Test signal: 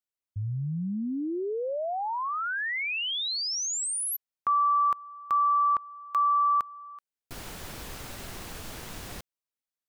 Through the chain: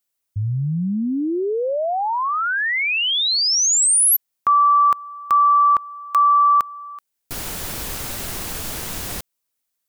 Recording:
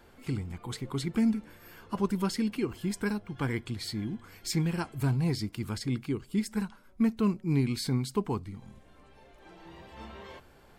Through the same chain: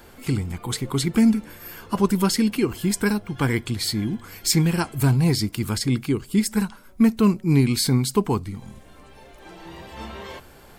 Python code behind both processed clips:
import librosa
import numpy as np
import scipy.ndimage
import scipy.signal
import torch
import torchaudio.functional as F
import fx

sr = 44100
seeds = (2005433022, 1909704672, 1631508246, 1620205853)

y = fx.high_shelf(x, sr, hz=6400.0, db=9.0)
y = y * 10.0 ** (9.0 / 20.0)